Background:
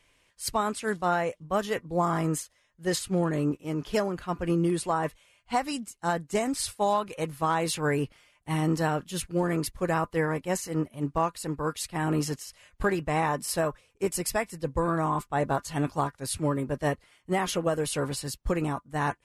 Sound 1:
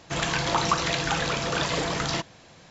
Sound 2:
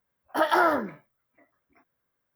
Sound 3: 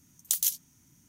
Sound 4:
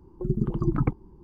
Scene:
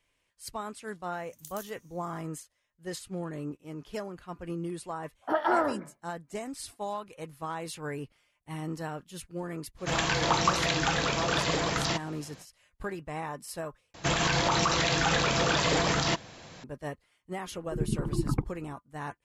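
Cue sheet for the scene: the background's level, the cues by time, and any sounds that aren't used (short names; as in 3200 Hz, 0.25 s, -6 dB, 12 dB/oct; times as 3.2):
background -10 dB
1.14 add 3 -4.5 dB + compressor 4:1, threshold -41 dBFS
4.93 add 2 -2 dB + LPF 1100 Hz 6 dB/oct
9.76 add 1 -1.5 dB, fades 0.05 s
13.94 replace with 1 -15 dB + maximiser +18 dB
17.51 add 4 -4.5 dB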